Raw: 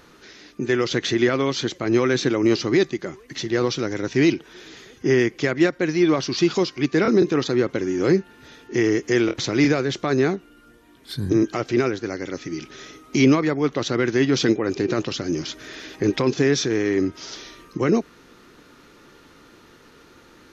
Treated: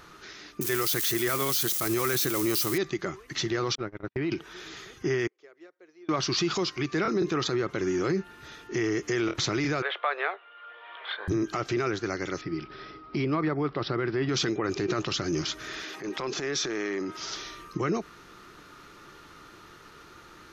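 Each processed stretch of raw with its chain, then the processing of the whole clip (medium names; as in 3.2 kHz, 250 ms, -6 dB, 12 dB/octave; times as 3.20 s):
0.61–2.78 s: zero-crossing glitches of -21 dBFS + treble shelf 5.9 kHz +12 dB
3.75–4.32 s: gate -25 dBFS, range -49 dB + compression 4:1, threshold -24 dBFS + distance through air 360 m
5.27–6.09 s: band-pass filter 440 Hz, Q 3 + differentiator
9.82–11.28 s: Chebyshev band-pass 500–3400 Hz, order 4 + three bands compressed up and down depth 70%
12.41–14.29 s: treble shelf 2.2 kHz -10.5 dB + careless resampling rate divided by 4×, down none, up filtered
15.84–17.17 s: high-pass 240 Hz + compression 3:1, threshold -26 dBFS + transient shaper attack -10 dB, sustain +4 dB
whole clip: peak limiter -17 dBFS; graphic EQ with 31 bands 250 Hz -10 dB, 500 Hz -6 dB, 1.25 kHz +6 dB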